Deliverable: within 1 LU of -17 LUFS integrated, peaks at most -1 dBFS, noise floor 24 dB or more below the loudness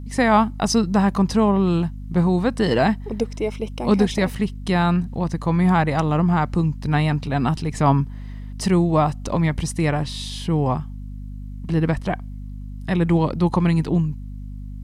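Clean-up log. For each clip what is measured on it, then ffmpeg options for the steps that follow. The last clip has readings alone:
hum 50 Hz; harmonics up to 250 Hz; hum level -31 dBFS; loudness -21.0 LUFS; peak -4.0 dBFS; loudness target -17.0 LUFS
-> -af "bandreject=f=50:t=h:w=4,bandreject=f=100:t=h:w=4,bandreject=f=150:t=h:w=4,bandreject=f=200:t=h:w=4,bandreject=f=250:t=h:w=4"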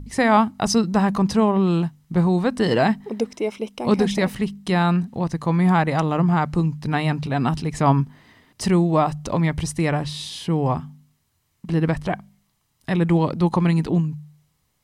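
hum none; loudness -21.5 LUFS; peak -4.0 dBFS; loudness target -17.0 LUFS
-> -af "volume=4.5dB,alimiter=limit=-1dB:level=0:latency=1"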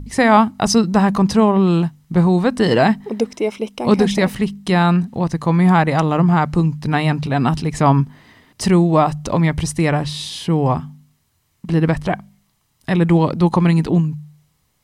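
loudness -17.0 LUFS; peak -1.0 dBFS; noise floor -64 dBFS

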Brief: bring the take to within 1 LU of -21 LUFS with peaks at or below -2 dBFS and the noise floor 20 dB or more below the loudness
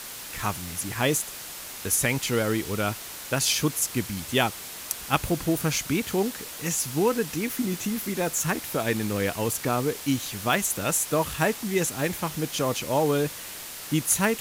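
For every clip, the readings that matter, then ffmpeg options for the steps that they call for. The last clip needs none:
noise floor -39 dBFS; noise floor target -47 dBFS; loudness -26.5 LUFS; peak -4.0 dBFS; loudness target -21.0 LUFS
-> -af "afftdn=nr=8:nf=-39"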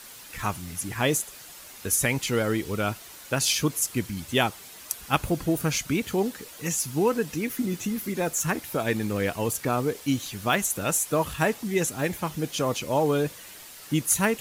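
noise floor -45 dBFS; noise floor target -47 dBFS
-> -af "afftdn=nr=6:nf=-45"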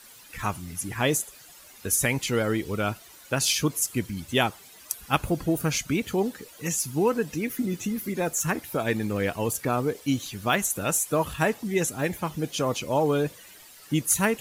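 noise floor -50 dBFS; loudness -26.5 LUFS; peak -5.0 dBFS; loudness target -21.0 LUFS
-> -af "volume=5.5dB,alimiter=limit=-2dB:level=0:latency=1"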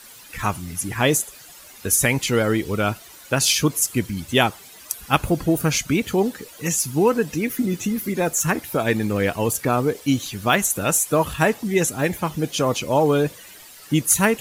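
loudness -21.0 LUFS; peak -2.0 dBFS; noise floor -44 dBFS

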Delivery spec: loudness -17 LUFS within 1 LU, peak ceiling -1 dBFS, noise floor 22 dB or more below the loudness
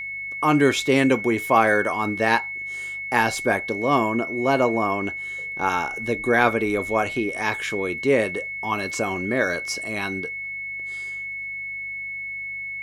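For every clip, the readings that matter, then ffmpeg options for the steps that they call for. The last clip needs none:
hum 50 Hz; harmonics up to 150 Hz; hum level -56 dBFS; steady tone 2200 Hz; tone level -29 dBFS; loudness -23.0 LUFS; peak -2.5 dBFS; loudness target -17.0 LUFS
-> -af "bandreject=f=50:t=h:w=4,bandreject=f=100:t=h:w=4,bandreject=f=150:t=h:w=4"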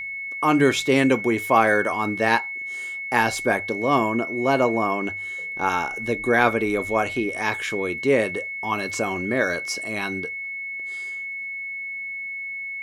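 hum none; steady tone 2200 Hz; tone level -29 dBFS
-> -af "bandreject=f=2.2k:w=30"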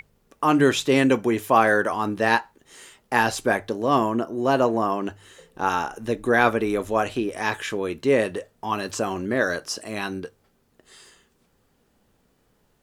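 steady tone none; loudness -23.0 LUFS; peak -2.0 dBFS; loudness target -17.0 LUFS
-> -af "volume=6dB,alimiter=limit=-1dB:level=0:latency=1"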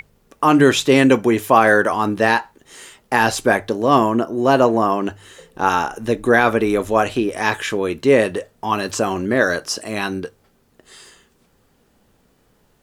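loudness -17.5 LUFS; peak -1.0 dBFS; noise floor -60 dBFS

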